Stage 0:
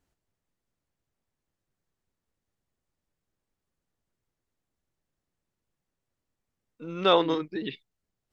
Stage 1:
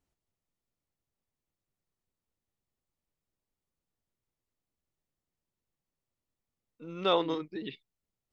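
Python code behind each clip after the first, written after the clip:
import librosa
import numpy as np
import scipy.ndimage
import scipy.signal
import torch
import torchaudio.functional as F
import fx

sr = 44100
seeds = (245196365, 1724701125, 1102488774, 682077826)

y = fx.peak_eq(x, sr, hz=1600.0, db=-5.0, octaves=0.27)
y = F.gain(torch.from_numpy(y), -5.5).numpy()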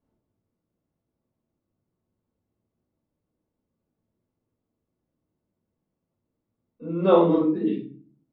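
y = fx.bandpass_q(x, sr, hz=270.0, q=0.66)
y = fx.room_shoebox(y, sr, seeds[0], volume_m3=360.0, walls='furnished', distance_m=5.4)
y = F.gain(torch.from_numpy(y), 4.5).numpy()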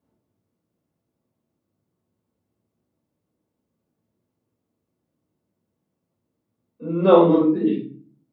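y = scipy.signal.sosfilt(scipy.signal.butter(2, 85.0, 'highpass', fs=sr, output='sos'), x)
y = F.gain(torch.from_numpy(y), 4.0).numpy()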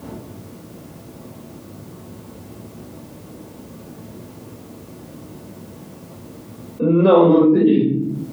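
y = fx.env_flatten(x, sr, amount_pct=70)
y = F.gain(torch.from_numpy(y), -1.0).numpy()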